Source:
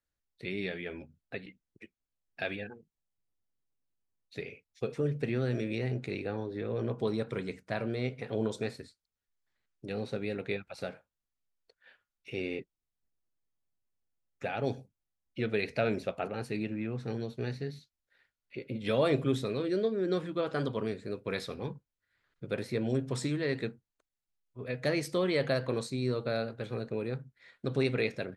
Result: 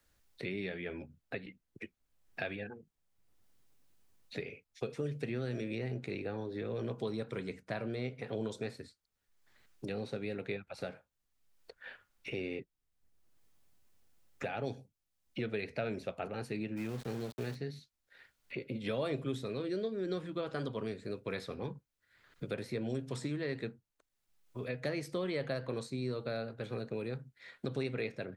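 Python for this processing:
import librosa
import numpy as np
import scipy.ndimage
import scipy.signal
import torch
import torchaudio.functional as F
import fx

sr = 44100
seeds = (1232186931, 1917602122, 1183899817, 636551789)

y = fx.sample_gate(x, sr, floor_db=-42.0, at=(16.76, 17.54), fade=0.02)
y = fx.band_squash(y, sr, depth_pct=70)
y = y * 10.0 ** (-5.0 / 20.0)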